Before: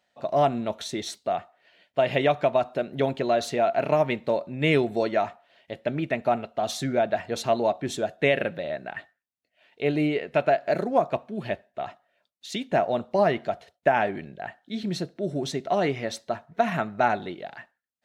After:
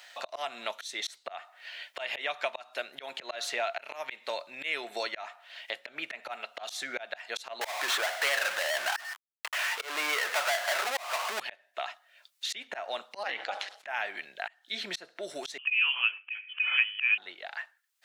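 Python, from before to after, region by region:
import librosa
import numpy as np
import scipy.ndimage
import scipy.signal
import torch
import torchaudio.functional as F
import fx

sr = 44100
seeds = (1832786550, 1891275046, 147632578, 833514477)

y = fx.chain(x, sr, fx.cvsd(bps=64000),
    fx.bandpass_q(hz=1100.0, q=1.6),
    fx.power_curve(exponent=0.35), at=(7.61, 11.4))
y = fx.chain(y, sr, fx.ring_mod(carrier_hz=100.0),
    fx.air_absorb(metres=63.0),
    fx.sustainer(db_per_s=110.0), at=(13.23, 13.87))
y = fx.chain(y, sr, fx.peak_eq(hz=740.0, db=11.5, octaves=0.84),
    fx.freq_invert(carrier_hz=3200), at=(15.58, 17.18))
y = scipy.signal.sosfilt(scipy.signal.butter(2, 1300.0, 'highpass', fs=sr, output='sos'), y)
y = fx.auto_swell(y, sr, attack_ms=290.0)
y = fx.band_squash(y, sr, depth_pct=70)
y = F.gain(torch.from_numpy(y), 3.0).numpy()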